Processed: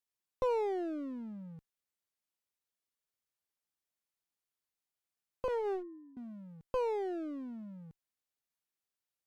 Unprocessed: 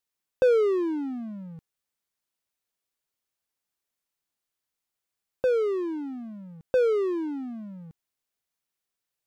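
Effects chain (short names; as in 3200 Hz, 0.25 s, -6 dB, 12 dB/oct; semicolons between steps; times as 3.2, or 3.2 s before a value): 5.48–6.17 sine-wave speech; one-sided clip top -34.5 dBFS, bottom -14.5 dBFS; gain -7 dB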